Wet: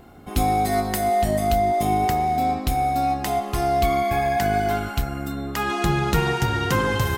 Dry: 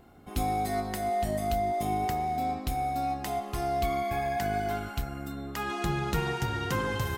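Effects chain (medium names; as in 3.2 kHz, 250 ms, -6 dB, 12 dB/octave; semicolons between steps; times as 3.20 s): 0.72–1.22 s: treble shelf 8.7 kHz +6 dB; trim +8.5 dB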